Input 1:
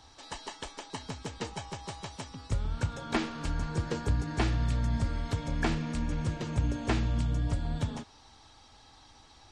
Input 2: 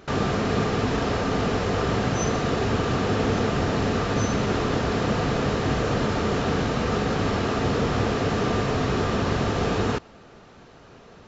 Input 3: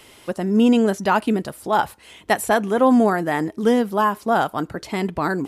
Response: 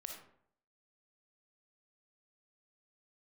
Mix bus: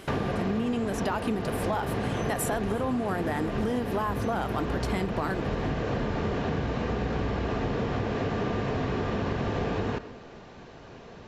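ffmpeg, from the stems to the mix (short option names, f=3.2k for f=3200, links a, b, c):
-filter_complex "[0:a]bass=f=250:g=10,treble=f=4k:g=-15,volume=-8dB[a];[1:a]acrossover=split=3300[b][c];[c]acompressor=threshold=-45dB:ratio=4:attack=1:release=60[d];[b][d]amix=inputs=2:normalize=0,highshelf=f=7.1k:g=-9,bandreject=f=1.3k:w=8.2,volume=0dB,asplit=2[e][f];[f]volume=-5.5dB[g];[2:a]alimiter=limit=-13.5dB:level=0:latency=1,dynaudnorm=f=350:g=3:m=11.5dB,volume=-5dB,asplit=2[h][i];[i]volume=-22dB[j];[3:a]atrim=start_sample=2205[k];[g][k]afir=irnorm=-1:irlink=0[l];[j]aecho=0:1:349|698|1047|1396|1745|2094|2443|2792:1|0.55|0.303|0.166|0.0915|0.0503|0.0277|0.0152[m];[a][e][h][l][m]amix=inputs=5:normalize=0,acompressor=threshold=-25dB:ratio=10"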